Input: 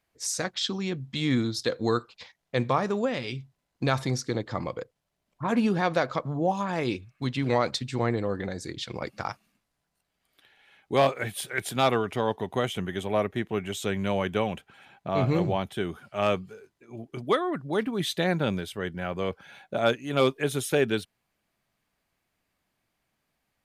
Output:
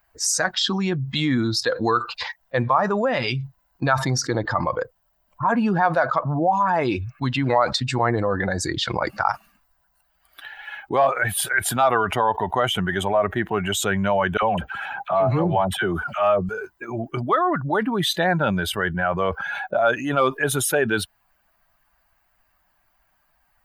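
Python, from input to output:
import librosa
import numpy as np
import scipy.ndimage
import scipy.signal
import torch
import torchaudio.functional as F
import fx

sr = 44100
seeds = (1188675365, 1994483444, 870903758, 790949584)

y = fx.dispersion(x, sr, late='lows', ms=54.0, hz=960.0, at=(14.37, 16.49))
y = fx.bin_expand(y, sr, power=1.5)
y = fx.band_shelf(y, sr, hz=1000.0, db=12.5, octaves=1.7)
y = fx.env_flatten(y, sr, amount_pct=70)
y = y * 10.0 ** (-5.5 / 20.0)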